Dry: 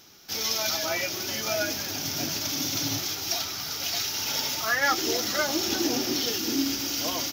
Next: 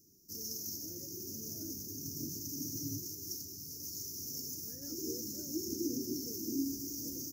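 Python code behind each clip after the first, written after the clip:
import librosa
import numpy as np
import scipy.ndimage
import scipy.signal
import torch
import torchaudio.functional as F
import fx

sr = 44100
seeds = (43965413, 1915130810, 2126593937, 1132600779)

y = scipy.signal.sosfilt(scipy.signal.cheby2(4, 40, [680.0, 3700.0], 'bandstop', fs=sr, output='sos'), x)
y = y * librosa.db_to_amplitude(-7.5)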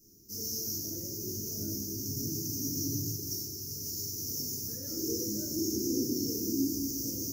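y = fx.room_shoebox(x, sr, seeds[0], volume_m3=84.0, walls='mixed', distance_m=1.6)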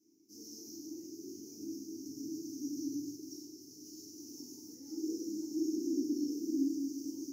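y = fx.vowel_filter(x, sr, vowel='u')
y = fx.bass_treble(y, sr, bass_db=-9, treble_db=11)
y = y * librosa.db_to_amplitude(6.5)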